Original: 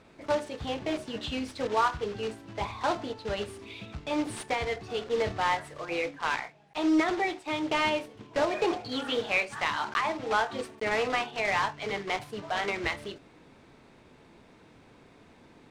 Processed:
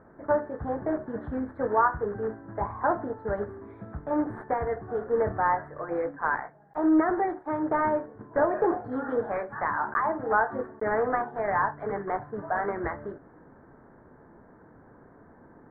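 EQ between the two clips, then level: elliptic low-pass 1.7 kHz, stop band 40 dB; +3.5 dB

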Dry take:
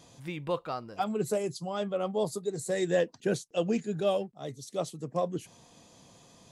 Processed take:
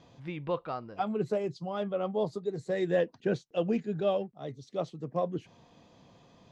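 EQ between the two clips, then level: distance through air 210 m; 0.0 dB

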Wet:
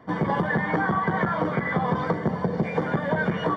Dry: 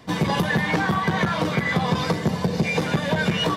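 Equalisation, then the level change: Savitzky-Golay filter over 41 samples; bass shelf 130 Hz -9 dB; 0.0 dB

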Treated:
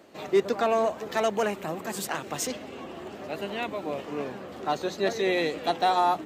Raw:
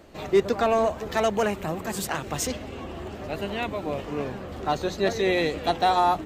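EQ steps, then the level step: high-pass 190 Hz 12 dB/octave; -2.0 dB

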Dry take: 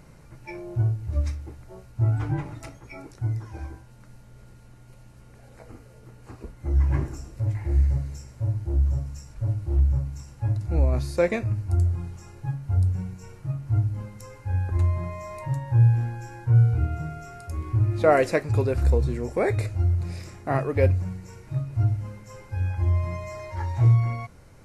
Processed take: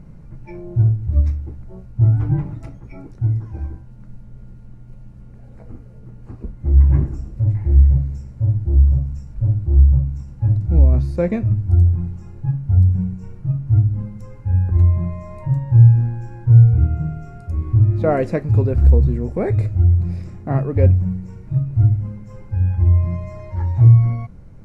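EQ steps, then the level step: tilt EQ -3 dB/octave; peaking EQ 190 Hz +7.5 dB 0.72 oct; -2.5 dB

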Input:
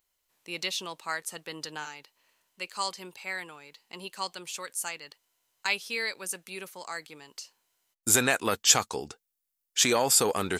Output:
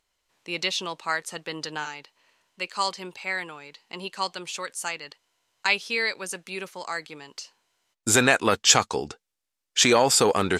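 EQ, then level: distance through air 59 m; +6.5 dB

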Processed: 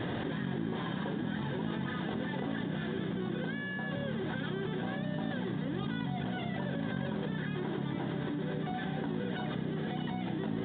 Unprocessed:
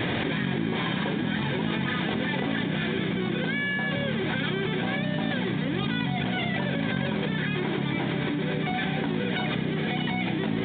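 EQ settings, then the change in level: peaking EQ 2.3 kHz -13 dB 0.26 oct; treble shelf 3.5 kHz -10.5 dB; -7.0 dB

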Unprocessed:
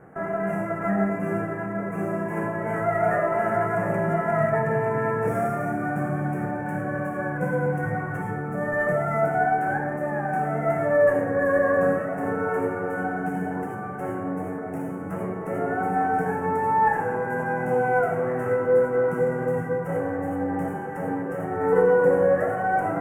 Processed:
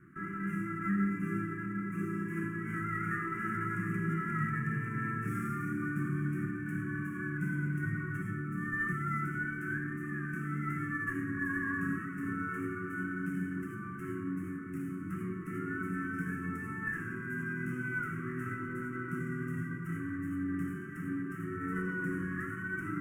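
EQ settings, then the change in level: Chebyshev band-stop 360–1200 Hz, order 4; -5.5 dB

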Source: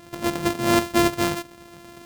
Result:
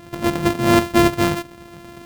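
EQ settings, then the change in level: tone controls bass +4 dB, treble -5 dB; treble shelf 11 kHz +3 dB; +4.0 dB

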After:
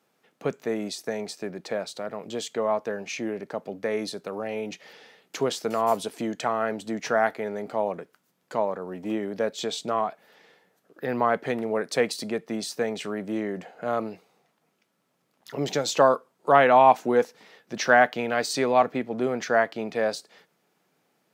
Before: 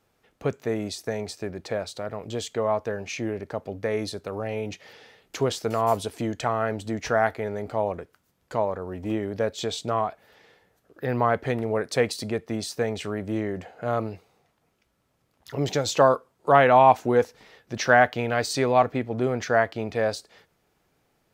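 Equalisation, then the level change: Chebyshev high-pass 170 Hz, order 3; 0.0 dB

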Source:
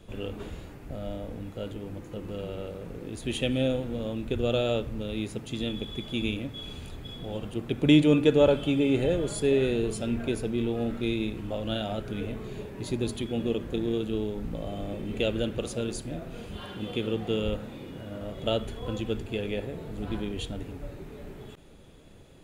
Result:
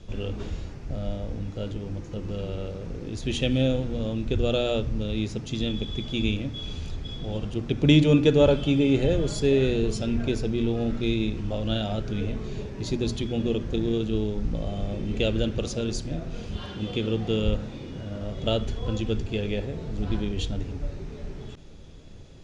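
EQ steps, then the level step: resonant low-pass 5.7 kHz, resonance Q 3; bass shelf 180 Hz +10.5 dB; hum notches 60/120/180/240/300 Hz; 0.0 dB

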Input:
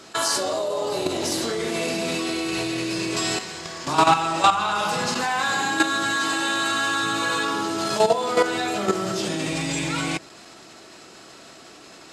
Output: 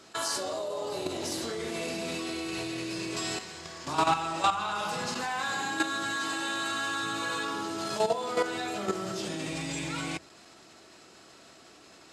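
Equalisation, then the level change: peaking EQ 79 Hz +7 dB 0.27 oct; -8.5 dB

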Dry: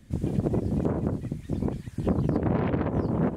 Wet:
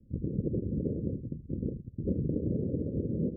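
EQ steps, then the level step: steep low-pass 540 Hz 72 dB/octave; -5.5 dB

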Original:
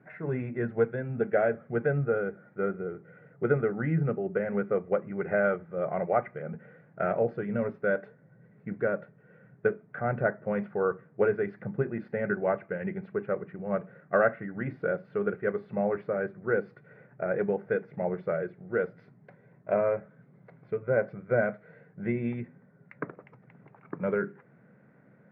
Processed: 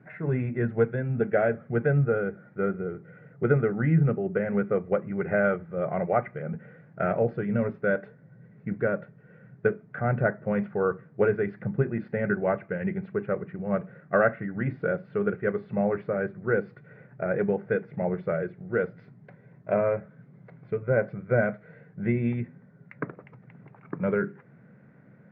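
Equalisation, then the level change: distance through air 170 m; bass shelf 210 Hz +9.5 dB; treble shelf 2.2 kHz +10 dB; 0.0 dB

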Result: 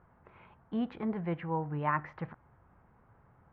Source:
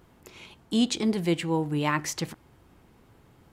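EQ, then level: low-pass 1.6 kHz 24 dB/octave; bass shelf 91 Hz -7 dB; peaking EQ 320 Hz -12.5 dB 1.3 oct; 0.0 dB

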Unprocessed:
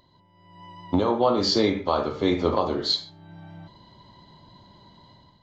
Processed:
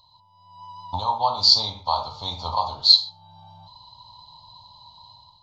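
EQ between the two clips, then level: FFT filter 110 Hz 0 dB, 360 Hz -27 dB, 920 Hz +11 dB, 1.8 kHz -25 dB, 4.2 kHz +14 dB, 6.4 kHz +4 dB, 9.2 kHz +1 dB; -2.0 dB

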